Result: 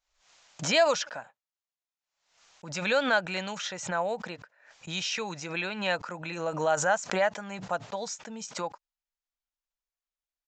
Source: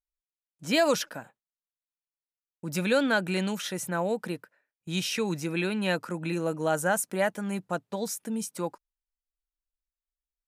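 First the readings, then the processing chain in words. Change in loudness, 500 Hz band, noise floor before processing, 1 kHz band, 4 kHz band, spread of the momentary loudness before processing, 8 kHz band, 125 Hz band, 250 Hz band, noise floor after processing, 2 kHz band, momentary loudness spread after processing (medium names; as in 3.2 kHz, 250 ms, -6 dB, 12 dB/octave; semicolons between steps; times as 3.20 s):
-0.5 dB, -0.5 dB, under -85 dBFS, +2.5 dB, +1.5 dB, 12 LU, -0.5 dB, -6.5 dB, -8.0 dB, under -85 dBFS, +1.5 dB, 14 LU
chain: resampled via 16 kHz; resonant low shelf 480 Hz -9 dB, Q 1.5; swell ahead of each attack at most 85 dB/s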